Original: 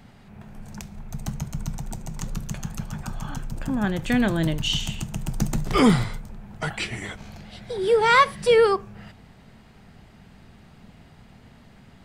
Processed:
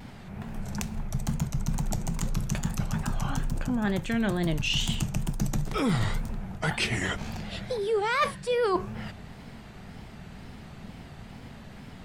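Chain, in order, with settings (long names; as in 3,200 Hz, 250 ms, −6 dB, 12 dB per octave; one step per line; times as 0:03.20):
reversed playback
downward compressor 8 to 1, threshold −29 dBFS, peak gain reduction 17 dB
reversed playback
tape wow and flutter 120 cents
level +5.5 dB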